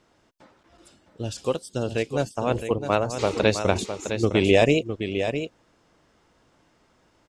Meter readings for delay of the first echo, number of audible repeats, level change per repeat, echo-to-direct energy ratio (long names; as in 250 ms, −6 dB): 659 ms, 1, repeats not evenly spaced, −8.5 dB